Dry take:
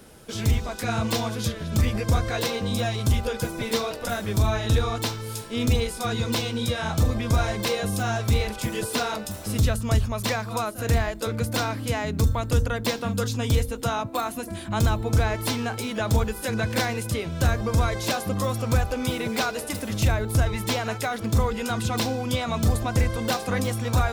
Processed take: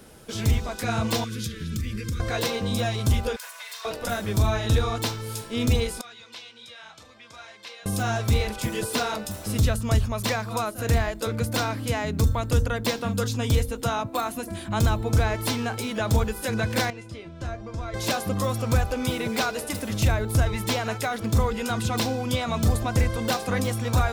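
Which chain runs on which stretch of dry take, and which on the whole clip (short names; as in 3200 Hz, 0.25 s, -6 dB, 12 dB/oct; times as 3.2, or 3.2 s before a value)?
1.24–2.2 compressor 5:1, threshold -26 dBFS + Butterworth band-stop 750 Hz, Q 0.71
3.36–3.85 minimum comb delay 1.9 ms + Bessel high-pass 1300 Hz, order 6 + compressor 10:1, threshold -34 dBFS
6.01–7.86 LPF 2900 Hz + differentiator
16.9–17.94 air absorption 90 m + resonator 340 Hz, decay 0.17 s, mix 80%
whole clip: dry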